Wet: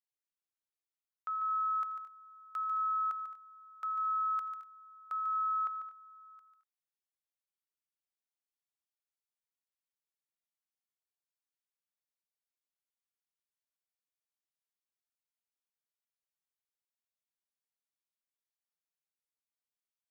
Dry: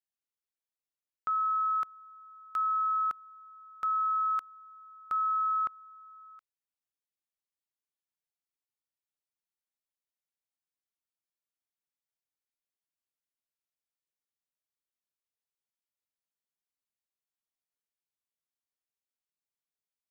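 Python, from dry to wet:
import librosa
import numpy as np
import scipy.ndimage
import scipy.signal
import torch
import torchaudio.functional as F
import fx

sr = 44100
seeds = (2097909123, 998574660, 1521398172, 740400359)

y = scipy.signal.sosfilt(scipy.signal.butter(2, 550.0, 'highpass', fs=sr, output='sos'), x)
y = fx.echo_multitap(y, sr, ms=(84, 145, 218, 242), db=(-19.5, -9.5, -15.5, -19.5))
y = y * librosa.db_to_amplitude(-6.5)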